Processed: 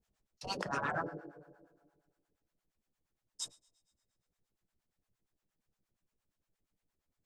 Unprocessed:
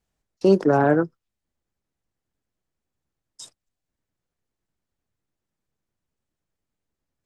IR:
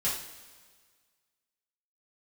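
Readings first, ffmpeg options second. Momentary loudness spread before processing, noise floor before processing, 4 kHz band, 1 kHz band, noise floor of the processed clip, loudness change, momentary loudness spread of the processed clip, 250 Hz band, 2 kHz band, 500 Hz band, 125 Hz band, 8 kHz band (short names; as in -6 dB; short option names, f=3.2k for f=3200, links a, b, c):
7 LU, -85 dBFS, -1.0 dB, -12.0 dB, under -85 dBFS, -19.5 dB, 16 LU, -24.5 dB, -8.5 dB, -23.5 dB, -20.5 dB, 0.0 dB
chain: -filter_complex "[0:a]asplit=2[a][b];[1:a]atrim=start_sample=2205[c];[b][c]afir=irnorm=-1:irlink=0,volume=-19dB[d];[a][d]amix=inputs=2:normalize=0,acrossover=split=630[e][f];[e]aeval=exprs='val(0)*(1-1/2+1/2*cos(2*PI*8.6*n/s))':c=same[g];[f]aeval=exprs='val(0)*(1-1/2-1/2*cos(2*PI*8.6*n/s))':c=same[h];[g][h]amix=inputs=2:normalize=0,afftfilt=real='re*lt(hypot(re,im),0.141)':imag='im*lt(hypot(re,im),0.141)':win_size=1024:overlap=0.75,volume=1dB"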